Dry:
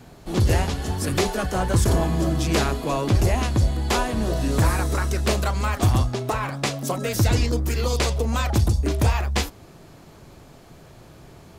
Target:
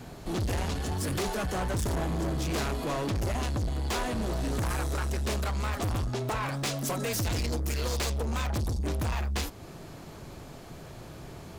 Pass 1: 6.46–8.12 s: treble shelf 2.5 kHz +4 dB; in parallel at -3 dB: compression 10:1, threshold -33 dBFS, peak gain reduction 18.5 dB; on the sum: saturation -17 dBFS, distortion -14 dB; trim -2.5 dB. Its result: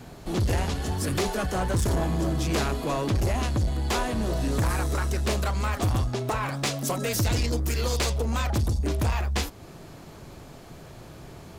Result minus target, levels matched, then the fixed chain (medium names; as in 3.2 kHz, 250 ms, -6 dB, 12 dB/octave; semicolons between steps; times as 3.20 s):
saturation: distortion -6 dB
6.46–8.12 s: treble shelf 2.5 kHz +4 dB; in parallel at -3 dB: compression 10:1, threshold -33 dBFS, peak gain reduction 18.5 dB; on the sum: saturation -24.5 dBFS, distortion -7 dB; trim -2.5 dB